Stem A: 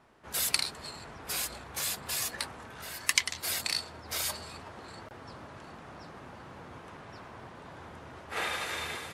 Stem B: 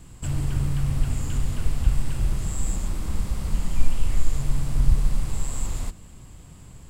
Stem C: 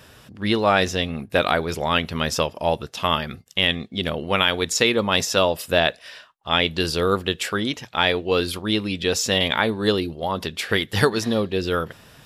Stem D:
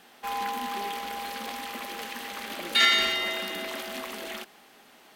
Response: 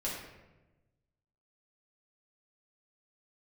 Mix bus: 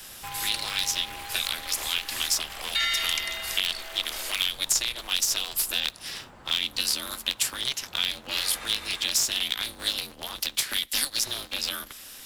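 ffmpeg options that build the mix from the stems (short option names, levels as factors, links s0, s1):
-filter_complex "[0:a]volume=0.75[s0];[1:a]volume=0.168[s1];[2:a]crystalizer=i=9.5:c=0,acrossover=split=140|3000[s2][s3][s4];[s3]acompressor=threshold=0.0708:ratio=6[s5];[s2][s5][s4]amix=inputs=3:normalize=0,aeval=exprs='val(0)*sgn(sin(2*PI*130*n/s))':c=same,volume=0.376[s6];[3:a]highpass=570,volume=0.891[s7];[s0][s1][s6][s7]amix=inputs=4:normalize=0,acrossover=split=270|630|1500[s8][s9][s10][s11];[s8]acompressor=threshold=0.00398:ratio=4[s12];[s9]acompressor=threshold=0.00251:ratio=4[s13];[s10]acompressor=threshold=0.00708:ratio=4[s14];[s11]acompressor=threshold=0.0708:ratio=4[s15];[s12][s13][s14][s15]amix=inputs=4:normalize=0"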